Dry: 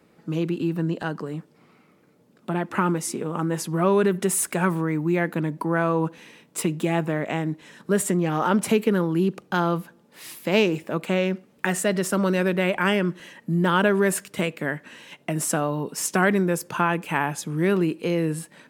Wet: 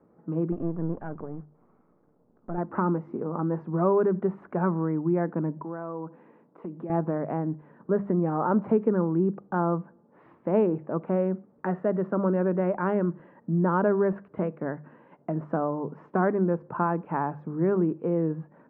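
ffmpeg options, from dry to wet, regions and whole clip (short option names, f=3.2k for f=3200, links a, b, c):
-filter_complex "[0:a]asettb=1/sr,asplit=3[a][b][c];[a]atrim=end=0.524[d];[b]atrim=start=0.52:end=2.58,asetpts=PTS-STARTPTS,afade=t=in:d=0.004:c=qsin,afade=t=out:st=2.056:d=0.004:c=qsin,aeval=exprs='if(lt(val(0),0),0.251*val(0),val(0))':c=same,lowpass=9.7k[e];[c]atrim=start=2.576[f];[d][e]acrossfade=d=0.004:c1=hsin:c2=qsin[g];[g][f]acrossfade=d=0.004:c1=qsin:c2=hsin,asettb=1/sr,asplit=3[h][i][j];[h]atrim=end=5.604[k];[i]atrim=start=5.6:end=6.9,asetpts=PTS-STARTPTS,afade=t=in:d=0.004:c=qsin,afade=t=out:st=1.296:d=0.004:c=qsin,highpass=170,acompressor=threshold=-36dB:ratio=2:attack=3.2:release=140:knee=1:detection=peak[l];[j]atrim=start=6.896[m];[k][l]acrossfade=d=0.004:c1=hsin:c2=qsin[n];[n][m]acrossfade=d=0.004:c1=qsin:c2=hsin,lowpass=f=1.2k:w=0.5412,lowpass=f=1.2k:w=1.3066,bandreject=f=50:t=h:w=6,bandreject=f=100:t=h:w=6,bandreject=f=150:t=h:w=6,bandreject=f=200:t=h:w=6,volume=-2dB"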